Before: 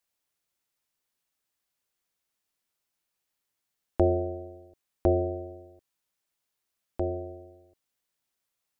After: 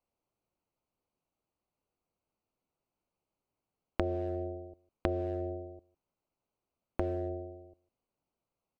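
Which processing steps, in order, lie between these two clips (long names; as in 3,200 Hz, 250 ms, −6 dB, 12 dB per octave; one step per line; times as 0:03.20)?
adaptive Wiener filter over 25 samples
single-tap delay 153 ms −23.5 dB
downward compressor 16 to 1, threshold −35 dBFS, peak gain reduction 18 dB
level +6.5 dB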